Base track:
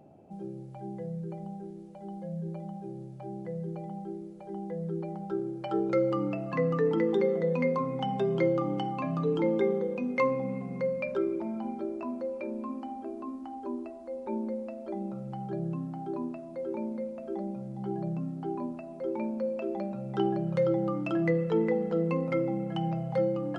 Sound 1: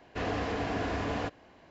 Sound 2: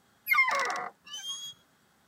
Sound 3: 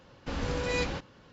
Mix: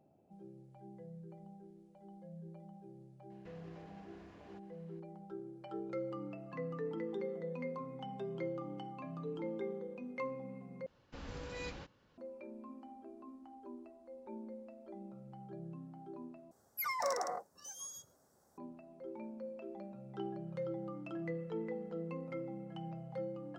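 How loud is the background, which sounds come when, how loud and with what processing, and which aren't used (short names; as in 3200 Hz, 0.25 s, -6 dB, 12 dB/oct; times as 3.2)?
base track -14 dB
3.3 add 1 -13.5 dB + compressor 5:1, threshold -43 dBFS
10.86 replace with 3 -14 dB
16.51 replace with 2 -3.5 dB + EQ curve 100 Hz 0 dB, 190 Hz -5 dB, 570 Hz +6 dB, 1700 Hz -12 dB, 3100 Hz -21 dB, 5600 Hz +1 dB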